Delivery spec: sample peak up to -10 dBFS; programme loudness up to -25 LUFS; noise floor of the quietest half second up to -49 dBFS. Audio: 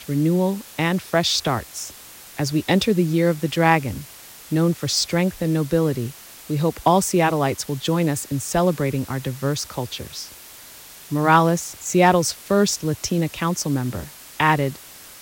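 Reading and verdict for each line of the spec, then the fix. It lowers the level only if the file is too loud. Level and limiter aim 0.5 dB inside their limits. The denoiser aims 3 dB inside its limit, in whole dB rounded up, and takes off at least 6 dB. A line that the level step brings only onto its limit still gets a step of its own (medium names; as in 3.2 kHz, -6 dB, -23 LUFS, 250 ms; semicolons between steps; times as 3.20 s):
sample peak -3.5 dBFS: fail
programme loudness -21.0 LUFS: fail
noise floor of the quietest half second -43 dBFS: fail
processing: noise reduction 6 dB, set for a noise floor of -43 dBFS; trim -4.5 dB; peak limiter -10.5 dBFS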